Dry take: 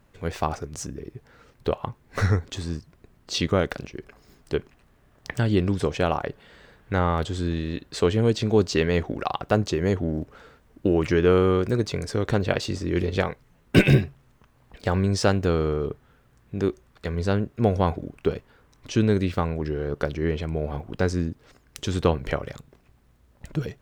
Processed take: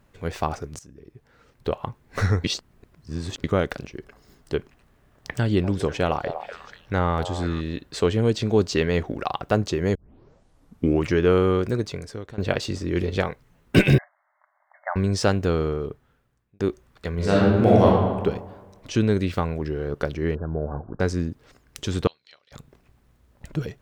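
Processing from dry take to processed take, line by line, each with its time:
0.79–1.83 fade in, from -17.5 dB
2.44–3.44 reverse
3.98–4.54 notch 2400 Hz
5.38–7.61 delay with a stepping band-pass 0.244 s, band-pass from 670 Hz, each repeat 1.4 oct, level -6 dB
9.95 tape start 1.09 s
11.65–12.38 fade out, to -22 dB
13.98–14.96 brick-wall FIR band-pass 570–2200 Hz
15.61–16.6 fade out
17.15–17.84 reverb throw, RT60 1.4 s, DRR -6.5 dB
18.94–19.59 mismatched tape noise reduction encoder only
20.35–21 brick-wall FIR low-pass 1700 Hz
22.07–22.52 band-pass 4100 Hz, Q 7

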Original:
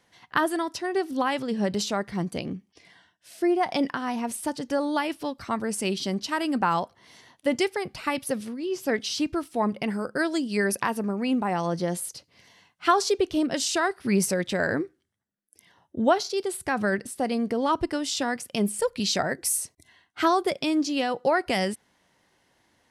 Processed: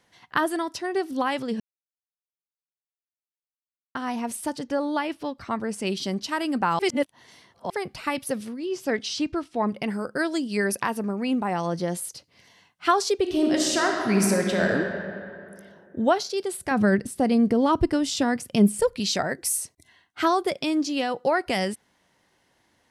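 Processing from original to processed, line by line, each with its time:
1.6–3.95 mute
4.63–5.87 LPF 3900 Hz 6 dB/oct
6.79–7.7 reverse
8.65–9.66 LPF 12000 Hz -> 4800 Hz
13.21–14.72 reverb throw, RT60 2.5 s, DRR 0.5 dB
16.71–18.96 low shelf 320 Hz +11.5 dB

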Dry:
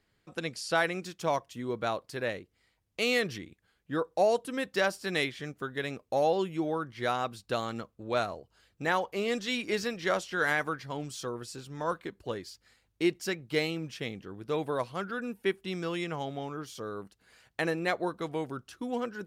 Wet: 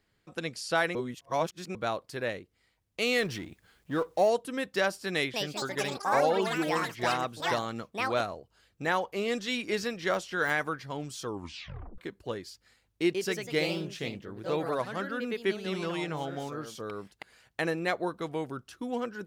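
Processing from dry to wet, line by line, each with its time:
0.95–1.75 reverse
3.18–4.3 G.711 law mismatch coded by mu
5.12–9.18 echoes that change speed 0.218 s, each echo +6 st, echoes 3
10.1–10.5 de-esser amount 90%
11.24 tape stop 0.74 s
13.02–17.6 echoes that change speed 0.125 s, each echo +2 st, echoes 2, each echo -6 dB

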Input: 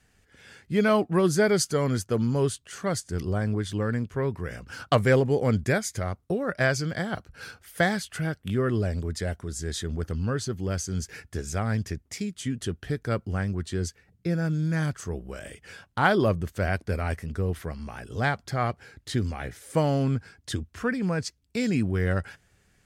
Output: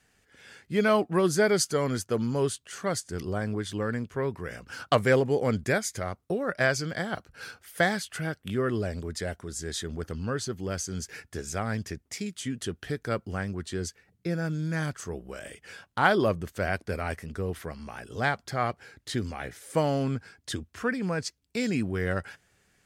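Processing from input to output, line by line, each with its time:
12.26–13.48 mismatched tape noise reduction encoder only
whole clip: low shelf 150 Hz -9.5 dB

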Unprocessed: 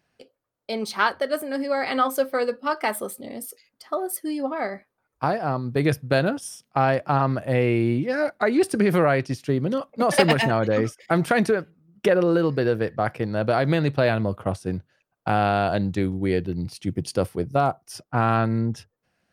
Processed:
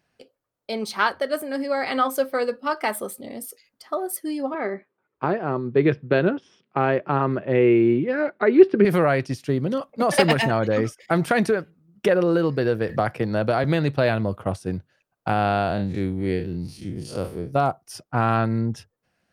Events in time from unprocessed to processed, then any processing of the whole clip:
4.54–8.85 speaker cabinet 140–3300 Hz, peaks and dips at 180 Hz +4 dB, 380 Hz +10 dB, 730 Hz -5 dB
12.89–13.64 three-band squash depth 70%
15.33–17.53 time blur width 0.1 s

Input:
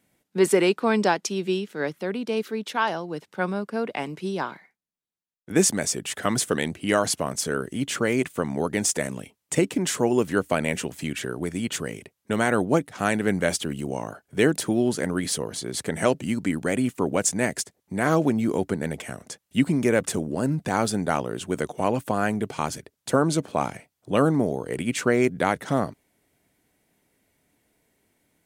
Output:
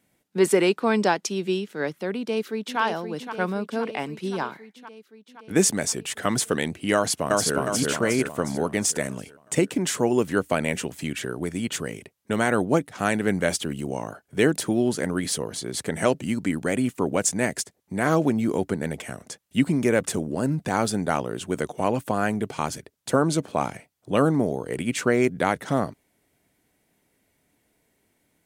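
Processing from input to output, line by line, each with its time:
2.16–2.8 echo throw 0.52 s, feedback 70%, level -8 dB
6.94–7.56 echo throw 0.36 s, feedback 50%, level -0.5 dB

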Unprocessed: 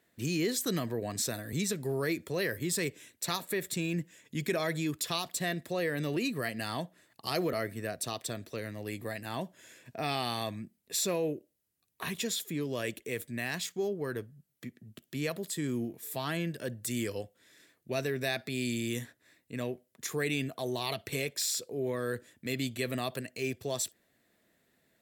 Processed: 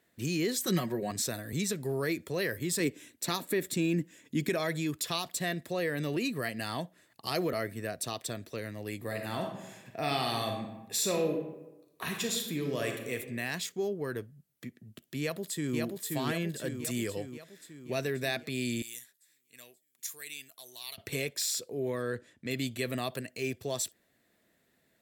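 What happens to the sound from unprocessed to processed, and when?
0.63–1.11 comb 5.4 ms, depth 79%
2.8–4.49 bell 280 Hz +9.5 dB 0.72 oct
9–13.13 reverb throw, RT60 1 s, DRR 2.5 dB
15.2–15.78 echo throw 0.53 s, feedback 60%, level -2.5 dB
18.82–20.98 pre-emphasis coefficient 0.97
22.02–22.51 air absorption 55 m

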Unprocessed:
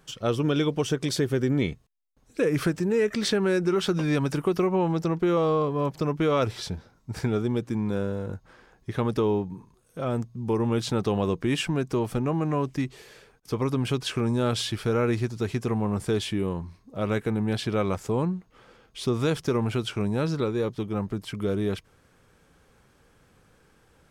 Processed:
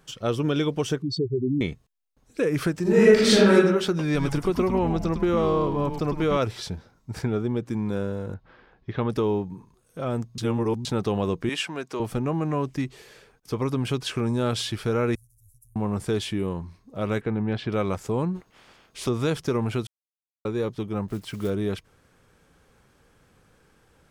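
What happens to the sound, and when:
1.02–1.61 spectral contrast raised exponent 3.4
2.82–3.54 reverb throw, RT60 0.81 s, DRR -8.5 dB
4.04–6.37 frequency-shifting echo 0.104 s, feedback 33%, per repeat -130 Hz, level -7 dB
7.22–7.66 high shelf 3700 Hz -9 dB
8.34–9.1 LPF 4100 Hz 24 dB/oct
10.38–10.85 reverse
11.49–12 weighting filter A
15.15–15.76 inverse Chebyshev band-stop 230–3000 Hz, stop band 70 dB
17.21–17.72 LPF 3000 Hz
18.34–19.07 spectral limiter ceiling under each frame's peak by 16 dB
19.87–20.45 mute
21.08–21.51 block floating point 5-bit

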